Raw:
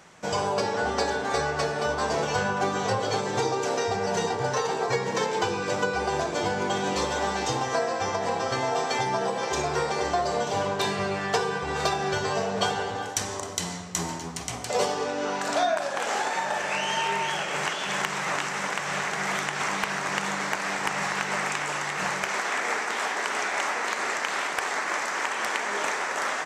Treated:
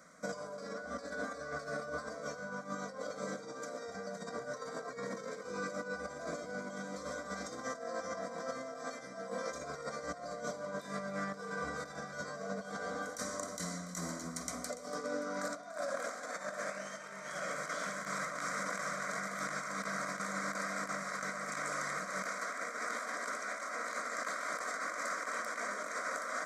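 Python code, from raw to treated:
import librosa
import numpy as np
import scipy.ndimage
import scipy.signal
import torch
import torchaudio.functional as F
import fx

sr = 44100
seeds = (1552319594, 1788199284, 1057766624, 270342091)

p1 = fx.over_compress(x, sr, threshold_db=-30.0, ratio=-0.5)
p2 = fx.fixed_phaser(p1, sr, hz=570.0, stages=8)
p3 = fx.notch_comb(p2, sr, f0_hz=860.0)
p4 = p3 + fx.echo_split(p3, sr, split_hz=740.0, low_ms=157, high_ms=288, feedback_pct=52, wet_db=-14.5, dry=0)
y = p4 * librosa.db_to_amplitude(-6.0)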